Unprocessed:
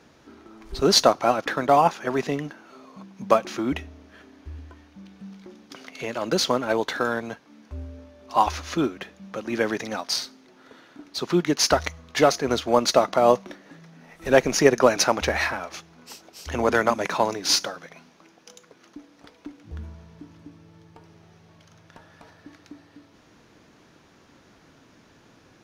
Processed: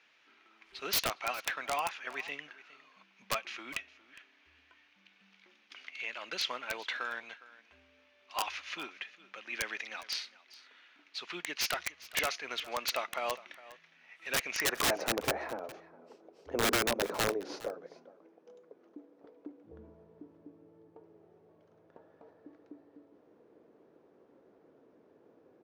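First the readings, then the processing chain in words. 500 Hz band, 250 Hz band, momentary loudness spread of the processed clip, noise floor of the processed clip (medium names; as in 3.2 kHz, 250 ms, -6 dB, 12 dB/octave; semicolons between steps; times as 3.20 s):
-16.5 dB, -18.0 dB, 22 LU, -67 dBFS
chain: band-pass sweep 2.5 kHz -> 450 Hz, 14.54–15.07 s; integer overflow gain 22 dB; delay 410 ms -19 dB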